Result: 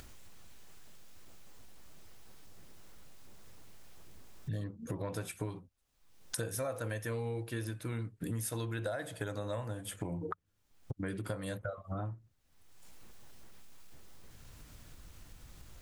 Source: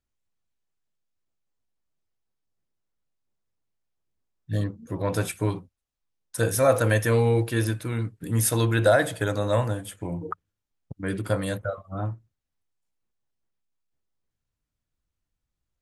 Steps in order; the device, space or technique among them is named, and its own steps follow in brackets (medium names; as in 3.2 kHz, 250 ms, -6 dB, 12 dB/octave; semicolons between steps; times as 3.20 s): upward and downward compression (upward compressor, threshold -29 dBFS; compression 8:1, threshold -36 dBFS, peak gain reduction 21 dB); trim +1 dB